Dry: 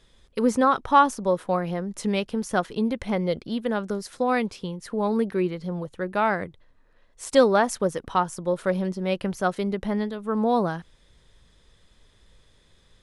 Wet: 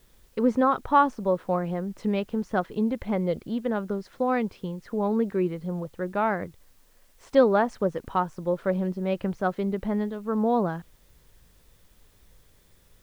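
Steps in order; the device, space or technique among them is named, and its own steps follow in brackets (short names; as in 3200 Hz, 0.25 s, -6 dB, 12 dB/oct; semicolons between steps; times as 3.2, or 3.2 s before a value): cassette deck with a dirty head (tape spacing loss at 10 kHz 27 dB; wow and flutter 22 cents; white noise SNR 38 dB)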